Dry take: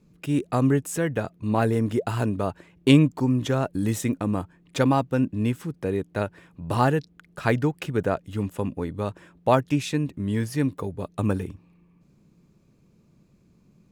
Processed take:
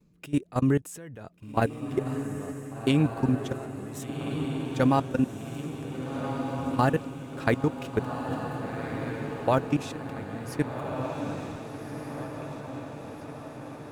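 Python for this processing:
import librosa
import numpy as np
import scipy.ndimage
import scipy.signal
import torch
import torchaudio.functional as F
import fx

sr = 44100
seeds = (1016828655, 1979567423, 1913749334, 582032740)

y = fx.level_steps(x, sr, step_db=21)
y = fx.echo_diffused(y, sr, ms=1548, feedback_pct=60, wet_db=-6)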